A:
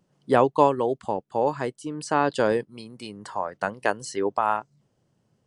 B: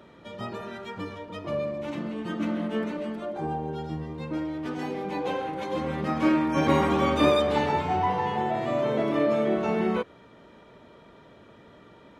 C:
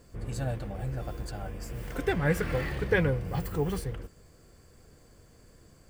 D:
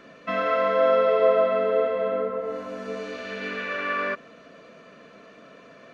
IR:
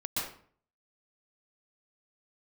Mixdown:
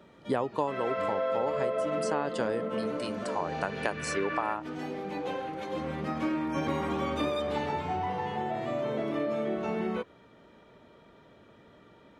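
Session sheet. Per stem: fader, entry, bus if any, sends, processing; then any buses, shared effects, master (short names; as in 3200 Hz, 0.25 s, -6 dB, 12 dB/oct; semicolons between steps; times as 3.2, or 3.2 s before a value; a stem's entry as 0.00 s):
-0.5 dB, 0.00 s, no send, dry
-4.5 dB, 0.00 s, no send, notch 1000 Hz, Q 24
off
-3.5 dB, 0.40 s, no send, dry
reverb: off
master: compressor 4:1, threshold -27 dBFS, peak gain reduction 12.5 dB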